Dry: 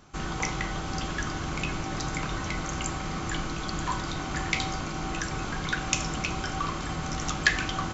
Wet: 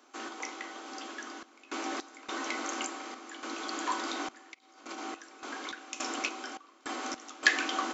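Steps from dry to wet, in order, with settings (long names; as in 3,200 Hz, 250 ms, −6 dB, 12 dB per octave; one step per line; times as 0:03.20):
Butterworth high-pass 240 Hz 96 dB per octave
0:04.54–0:04.98: compressor whose output falls as the input rises −39 dBFS, ratio −0.5
sample-and-hold tremolo 3.5 Hz, depth 95%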